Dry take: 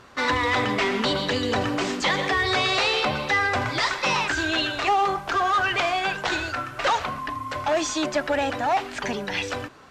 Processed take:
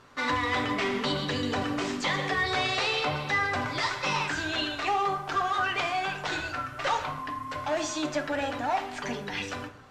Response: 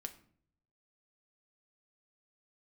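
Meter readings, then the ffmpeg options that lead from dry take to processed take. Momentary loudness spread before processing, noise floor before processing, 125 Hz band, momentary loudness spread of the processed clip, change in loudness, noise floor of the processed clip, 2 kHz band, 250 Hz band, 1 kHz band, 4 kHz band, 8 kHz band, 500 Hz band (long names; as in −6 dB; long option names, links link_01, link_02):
7 LU, −38 dBFS, −3.5 dB, 7 LU, −5.0 dB, −40 dBFS, −5.0 dB, −4.0 dB, −5.0 dB, −5.5 dB, −5.5 dB, −6.0 dB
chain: -filter_complex "[1:a]atrim=start_sample=2205,asetrate=28224,aresample=44100[link_01];[0:a][link_01]afir=irnorm=-1:irlink=0,volume=-4.5dB"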